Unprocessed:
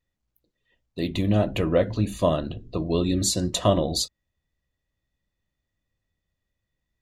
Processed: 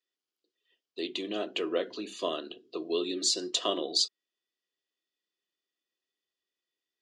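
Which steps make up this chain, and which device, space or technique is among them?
phone speaker on a table (speaker cabinet 340–8000 Hz, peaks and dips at 390 Hz +5 dB, 570 Hz -9 dB, 870 Hz -9 dB, 2000 Hz -4 dB, 3100 Hz +8 dB, 4900 Hz +7 dB); gain -4.5 dB

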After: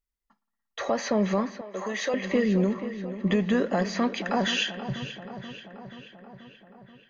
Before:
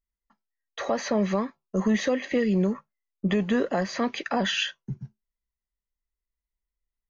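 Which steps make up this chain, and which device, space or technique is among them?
dub delay into a spring reverb (darkening echo 0.482 s, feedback 65%, low-pass 4700 Hz, level -12 dB; spring tank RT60 1.7 s, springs 57 ms, chirp 65 ms, DRR 18.5 dB); 1.61–2.14 HPF 510 Hz 12 dB/oct

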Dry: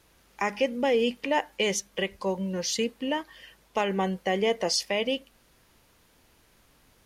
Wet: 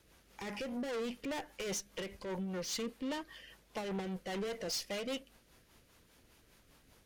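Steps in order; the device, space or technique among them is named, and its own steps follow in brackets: overdriven rotary cabinet (tube stage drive 34 dB, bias 0.35; rotary speaker horn 5 Hz)

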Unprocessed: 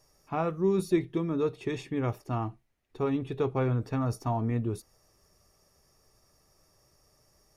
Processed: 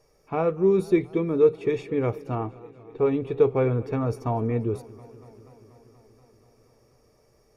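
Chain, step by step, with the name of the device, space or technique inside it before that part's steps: inside a helmet (high shelf 3600 Hz -7.5 dB; small resonant body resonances 460/2300 Hz, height 10 dB, ringing for 25 ms); 2.35–3.05 tone controls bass -2 dB, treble -14 dB; warbling echo 0.24 s, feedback 75%, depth 101 cents, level -22 dB; gain +2 dB

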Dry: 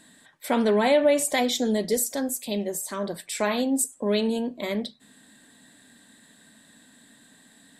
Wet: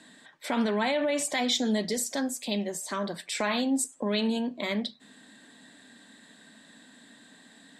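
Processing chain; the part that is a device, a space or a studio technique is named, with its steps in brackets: DJ mixer with the lows and highs turned down (three-band isolator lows -12 dB, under 160 Hz, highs -17 dB, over 7300 Hz; limiter -17.5 dBFS, peak gain reduction 7.5 dB); dynamic EQ 450 Hz, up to -8 dB, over -40 dBFS, Q 1.1; gain +2.5 dB

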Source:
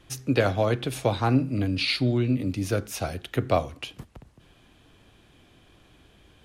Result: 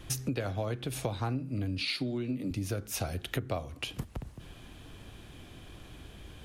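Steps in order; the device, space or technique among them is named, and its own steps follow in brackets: 1.81–2.51 HPF 150 Hz 24 dB/oct; ASMR close-microphone chain (low shelf 150 Hz +6.5 dB; compressor 6:1, threshold -36 dBFS, peak gain reduction 20.5 dB; high shelf 8900 Hz +6.5 dB); gain +4.5 dB

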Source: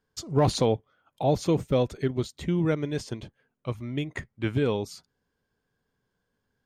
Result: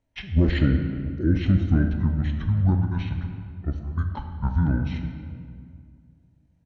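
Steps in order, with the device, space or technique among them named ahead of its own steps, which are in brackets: 1.24–1.66 low shelf 69 Hz +5 dB; monster voice (pitch shift -9 st; formant shift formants -4.5 st; low shelf 200 Hz +5 dB; reverb RT60 2.2 s, pre-delay 16 ms, DRR 5 dB)

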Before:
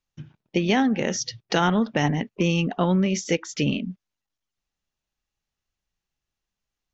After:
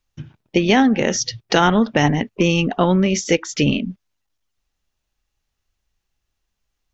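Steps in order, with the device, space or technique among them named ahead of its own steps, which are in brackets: low shelf boost with a cut just above (low shelf 110 Hz +6.5 dB; bell 170 Hz -5 dB 0.64 oct); gain +6.5 dB

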